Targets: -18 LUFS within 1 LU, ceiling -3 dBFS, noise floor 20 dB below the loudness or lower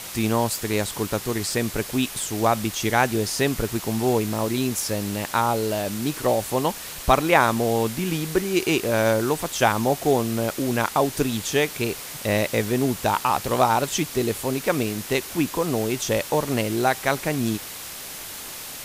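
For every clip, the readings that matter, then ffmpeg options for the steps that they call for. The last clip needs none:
noise floor -36 dBFS; noise floor target -44 dBFS; loudness -23.5 LUFS; peak level -4.0 dBFS; loudness target -18.0 LUFS
-> -af "afftdn=nr=8:nf=-36"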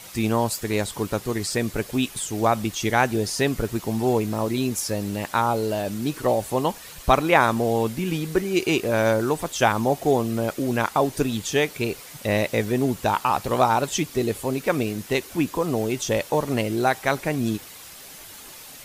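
noise floor -42 dBFS; noise floor target -44 dBFS
-> -af "afftdn=nr=6:nf=-42"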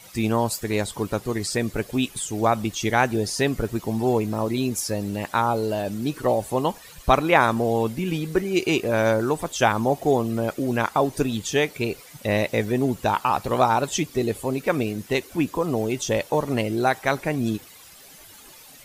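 noise floor -47 dBFS; loudness -23.5 LUFS; peak level -4.0 dBFS; loudness target -18.0 LUFS
-> -af "volume=1.88,alimiter=limit=0.708:level=0:latency=1"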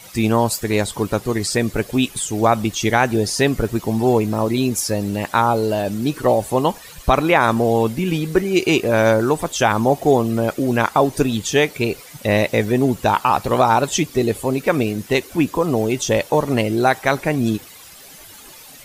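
loudness -18.5 LUFS; peak level -3.0 dBFS; noise floor -41 dBFS

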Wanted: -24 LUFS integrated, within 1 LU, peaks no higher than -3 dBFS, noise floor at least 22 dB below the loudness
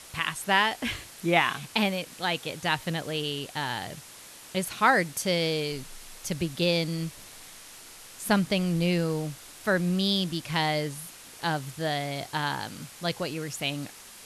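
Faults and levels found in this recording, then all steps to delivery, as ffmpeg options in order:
noise floor -48 dBFS; noise floor target -50 dBFS; loudness -28.0 LUFS; peak level -7.5 dBFS; loudness target -24.0 LUFS
-> -af "afftdn=nr=6:nf=-48"
-af "volume=1.58"

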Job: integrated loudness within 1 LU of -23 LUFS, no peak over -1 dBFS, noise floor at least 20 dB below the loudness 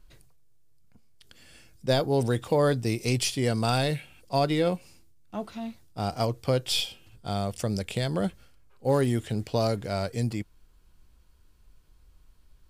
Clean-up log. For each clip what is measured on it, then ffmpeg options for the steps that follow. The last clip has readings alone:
loudness -28.0 LUFS; peak level -12.5 dBFS; loudness target -23.0 LUFS
-> -af "volume=1.78"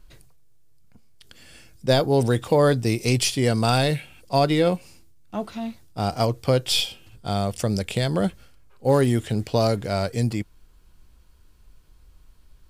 loudness -23.0 LUFS; peak level -7.5 dBFS; noise floor -54 dBFS

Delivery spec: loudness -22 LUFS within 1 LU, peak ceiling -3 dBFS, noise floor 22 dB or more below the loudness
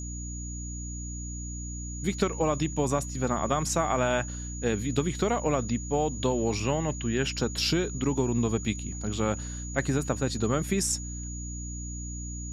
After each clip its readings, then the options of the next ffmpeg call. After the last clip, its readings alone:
hum 60 Hz; highest harmonic 300 Hz; hum level -34 dBFS; steady tone 6.8 kHz; tone level -40 dBFS; loudness -29.5 LUFS; peak level -12.0 dBFS; loudness target -22.0 LUFS
-> -af "bandreject=f=60:t=h:w=4,bandreject=f=120:t=h:w=4,bandreject=f=180:t=h:w=4,bandreject=f=240:t=h:w=4,bandreject=f=300:t=h:w=4"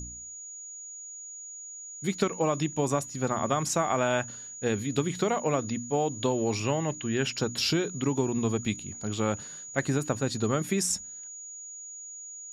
hum not found; steady tone 6.8 kHz; tone level -40 dBFS
-> -af "bandreject=f=6800:w=30"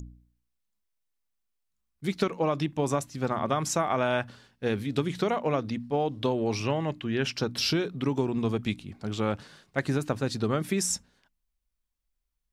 steady tone not found; loudness -29.0 LUFS; peak level -12.5 dBFS; loudness target -22.0 LUFS
-> -af "volume=2.24"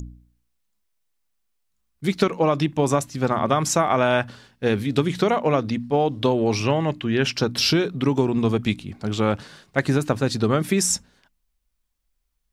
loudness -22.0 LUFS; peak level -5.5 dBFS; noise floor -73 dBFS

